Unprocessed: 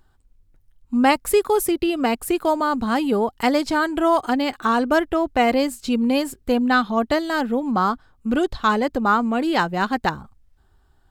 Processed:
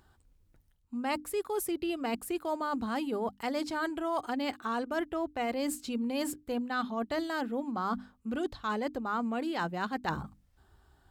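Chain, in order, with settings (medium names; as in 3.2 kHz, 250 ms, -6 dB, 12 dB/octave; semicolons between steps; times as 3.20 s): high-pass 44 Hz; hum notches 50/100/150/200/250/300 Hz; reverse; compression 6:1, threshold -31 dBFS, peak gain reduction 18.5 dB; reverse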